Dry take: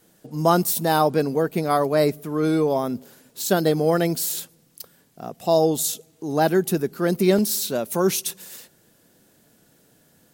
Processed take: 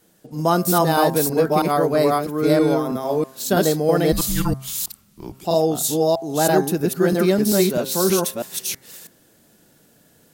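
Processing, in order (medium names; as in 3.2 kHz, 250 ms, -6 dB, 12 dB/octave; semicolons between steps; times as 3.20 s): chunks repeated in reverse 324 ms, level 0 dB; 4.12–5.45 s: frequency shift -360 Hz; de-hum 132.8 Hz, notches 17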